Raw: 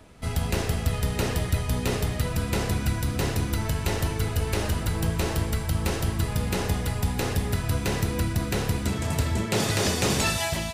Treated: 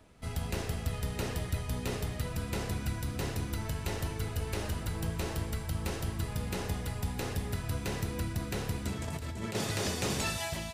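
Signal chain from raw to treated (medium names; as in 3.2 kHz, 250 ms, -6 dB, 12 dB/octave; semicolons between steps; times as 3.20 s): 9.04–9.55 s: compressor with a negative ratio -29 dBFS, ratio -1; trim -8.5 dB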